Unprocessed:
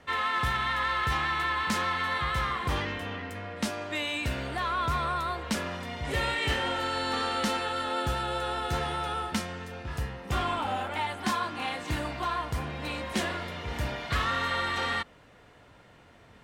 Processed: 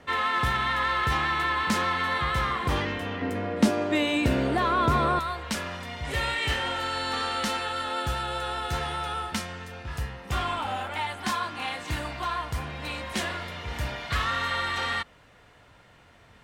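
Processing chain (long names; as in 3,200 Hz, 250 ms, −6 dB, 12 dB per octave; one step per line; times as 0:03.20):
parametric band 310 Hz +3 dB 2.4 octaves, from 0:03.21 +11.5 dB, from 0:05.19 −5 dB
level +2 dB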